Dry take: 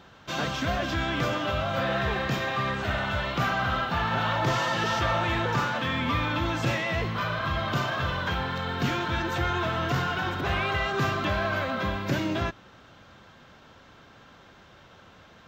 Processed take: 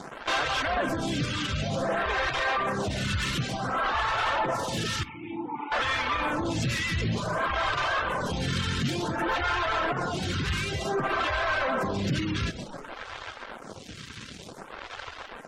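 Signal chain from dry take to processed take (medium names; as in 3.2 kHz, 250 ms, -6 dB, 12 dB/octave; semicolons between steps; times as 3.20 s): in parallel at -8.5 dB: fuzz box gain 46 dB, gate -50 dBFS; on the sum: frequency-shifting echo 131 ms, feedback 46%, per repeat -36 Hz, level -9.5 dB; reverb removal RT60 0.56 s; 5.03–5.72 s: vowel filter u; on a send at -19 dB: reverberation RT60 0.75 s, pre-delay 3 ms; 3.75–4.17 s: on the sum: whistle 1.1 kHz -27 dBFS; peak limiter -18.5 dBFS, peak gain reduction 8 dB; spectral gate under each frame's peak -30 dB strong; lamp-driven phase shifter 0.55 Hz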